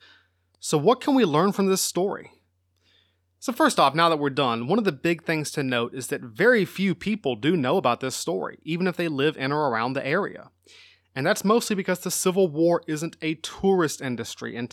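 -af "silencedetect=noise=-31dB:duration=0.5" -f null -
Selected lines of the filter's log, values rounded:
silence_start: 0.00
silence_end: 0.64 | silence_duration: 0.64
silence_start: 2.21
silence_end: 3.44 | silence_duration: 1.23
silence_start: 10.40
silence_end: 11.17 | silence_duration: 0.76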